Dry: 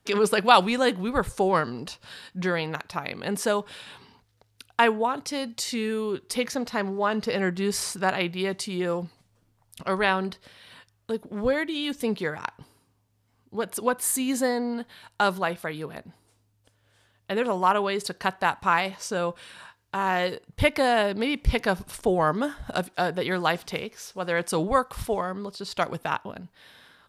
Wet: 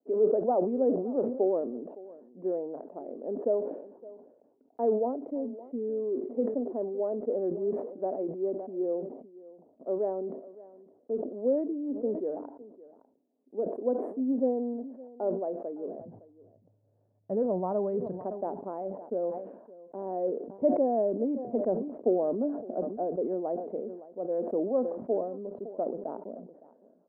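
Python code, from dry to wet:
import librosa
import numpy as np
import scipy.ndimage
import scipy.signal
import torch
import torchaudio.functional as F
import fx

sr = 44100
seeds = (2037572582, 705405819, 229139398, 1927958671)

y = fx.ellip_bandpass(x, sr, low_hz=fx.steps((0.0, 250.0), (15.98, 110.0), (18.21, 230.0)), high_hz=650.0, order=3, stop_db=80)
y = y + 10.0 ** (-19.5 / 20.0) * np.pad(y, (int(563 * sr / 1000.0), 0))[:len(y)]
y = fx.sustainer(y, sr, db_per_s=68.0)
y = y * librosa.db_to_amplitude(-1.5)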